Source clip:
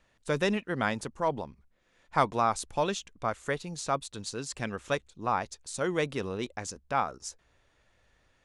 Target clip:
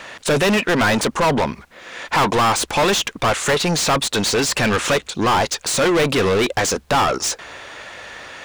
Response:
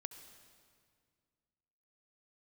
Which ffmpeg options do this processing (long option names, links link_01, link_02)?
-filter_complex "[0:a]asplit=2[link_01][link_02];[link_02]acompressor=threshold=-36dB:ratio=6,volume=-3dB[link_03];[link_01][link_03]amix=inputs=2:normalize=0,asplit=2[link_04][link_05];[link_05]highpass=frequency=720:poles=1,volume=38dB,asoftclip=type=tanh:threshold=-9dB[link_06];[link_04][link_06]amix=inputs=2:normalize=0,lowpass=frequency=4400:poles=1,volume=-6dB"